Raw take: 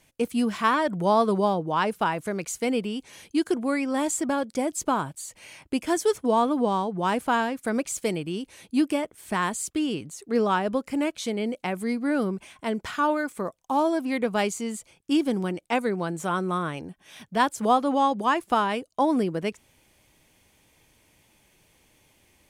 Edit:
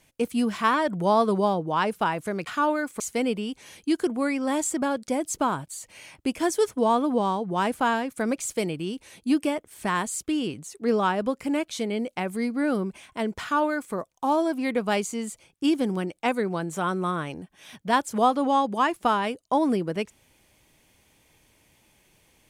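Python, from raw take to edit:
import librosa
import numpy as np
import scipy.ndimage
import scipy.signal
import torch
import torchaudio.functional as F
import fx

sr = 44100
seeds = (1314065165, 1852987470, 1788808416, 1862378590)

y = fx.edit(x, sr, fx.duplicate(start_s=12.88, length_s=0.53, to_s=2.47), tone=tone)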